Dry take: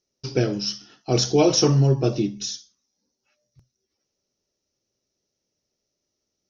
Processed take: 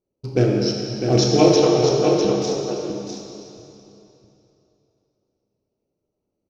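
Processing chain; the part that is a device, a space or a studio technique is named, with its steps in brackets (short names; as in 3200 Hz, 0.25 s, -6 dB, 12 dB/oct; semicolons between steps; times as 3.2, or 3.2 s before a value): Wiener smoothing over 25 samples; 1.56–2.25 elliptic band-pass 420–4000 Hz; echo 0.652 s -6.5 dB; swimming-pool hall (reverb RT60 3.0 s, pre-delay 3 ms, DRR -1 dB; high shelf 5300 Hz -6 dB); gain +2.5 dB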